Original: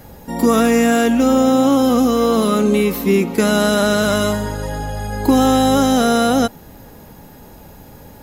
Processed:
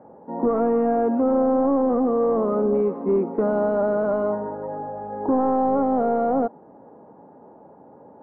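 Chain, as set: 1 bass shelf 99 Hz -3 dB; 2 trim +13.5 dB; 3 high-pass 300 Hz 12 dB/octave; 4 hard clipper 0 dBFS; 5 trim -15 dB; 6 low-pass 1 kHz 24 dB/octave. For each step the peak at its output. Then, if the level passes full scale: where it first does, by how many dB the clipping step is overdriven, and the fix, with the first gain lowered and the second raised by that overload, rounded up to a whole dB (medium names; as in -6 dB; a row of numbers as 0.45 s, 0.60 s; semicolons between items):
-3.5 dBFS, +10.0 dBFS, +9.5 dBFS, 0.0 dBFS, -15.0 dBFS, -13.5 dBFS; step 2, 9.5 dB; step 2 +3.5 dB, step 5 -5 dB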